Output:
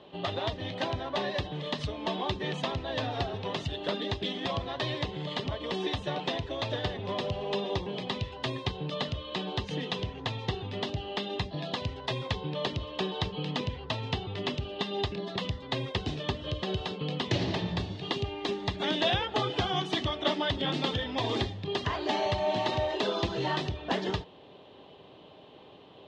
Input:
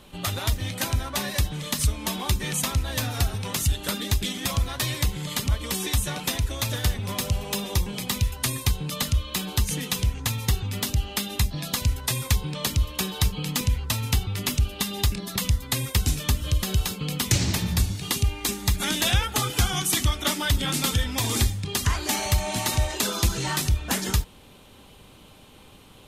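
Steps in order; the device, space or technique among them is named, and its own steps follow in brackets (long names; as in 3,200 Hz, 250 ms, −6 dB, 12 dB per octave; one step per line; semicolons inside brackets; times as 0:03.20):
kitchen radio (loudspeaker in its box 170–3,500 Hz, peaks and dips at 220 Hz −7 dB, 400 Hz +5 dB, 650 Hz +6 dB, 1,400 Hz −9 dB, 2,300 Hz −9 dB)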